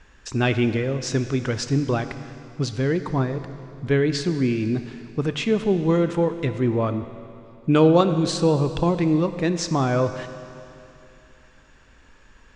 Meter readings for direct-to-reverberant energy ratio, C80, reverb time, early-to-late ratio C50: 9.5 dB, 11.0 dB, 2.8 s, 10.5 dB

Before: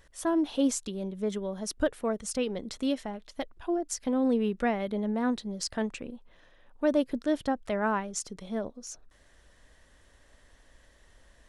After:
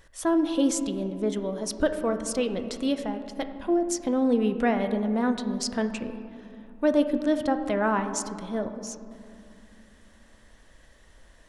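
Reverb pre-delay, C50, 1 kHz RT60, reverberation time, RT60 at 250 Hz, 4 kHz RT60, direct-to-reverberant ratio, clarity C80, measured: 6 ms, 9.5 dB, 2.5 s, 2.6 s, 3.6 s, 1.3 s, 7.5 dB, 10.5 dB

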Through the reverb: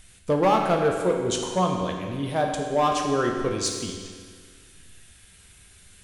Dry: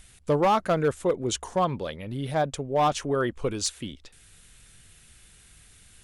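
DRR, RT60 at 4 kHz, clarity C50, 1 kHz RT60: 1.0 dB, 1.7 s, 3.0 dB, 1.8 s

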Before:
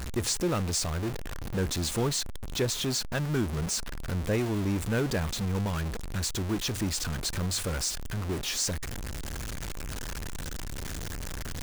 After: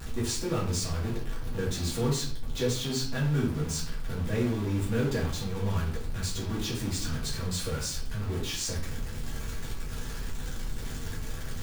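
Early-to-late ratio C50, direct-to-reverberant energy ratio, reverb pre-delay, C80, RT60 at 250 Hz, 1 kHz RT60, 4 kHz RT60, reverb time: 5.5 dB, -6.5 dB, 3 ms, 9.5 dB, 0.75 s, 0.45 s, 0.45 s, 0.50 s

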